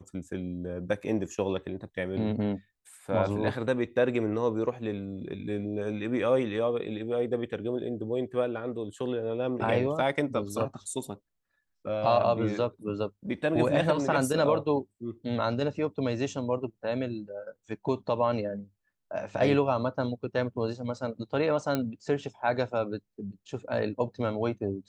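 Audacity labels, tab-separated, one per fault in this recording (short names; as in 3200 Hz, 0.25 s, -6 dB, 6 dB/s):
21.750000	21.750000	pop -14 dBFS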